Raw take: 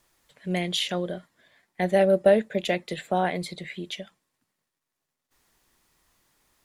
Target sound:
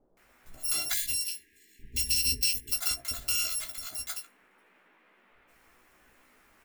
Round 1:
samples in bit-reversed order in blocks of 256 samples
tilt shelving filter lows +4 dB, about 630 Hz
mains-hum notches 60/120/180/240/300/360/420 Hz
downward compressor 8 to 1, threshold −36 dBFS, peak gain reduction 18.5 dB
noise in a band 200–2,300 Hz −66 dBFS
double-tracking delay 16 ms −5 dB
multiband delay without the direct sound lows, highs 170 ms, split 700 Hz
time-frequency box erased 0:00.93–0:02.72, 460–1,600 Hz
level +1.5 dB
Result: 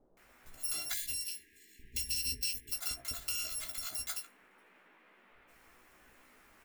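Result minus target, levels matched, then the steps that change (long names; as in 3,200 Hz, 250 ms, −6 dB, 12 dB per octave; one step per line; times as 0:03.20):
downward compressor: peak gain reduction +8.5 dB
change: downward compressor 8 to 1, threshold −26.5 dBFS, peak gain reduction 10 dB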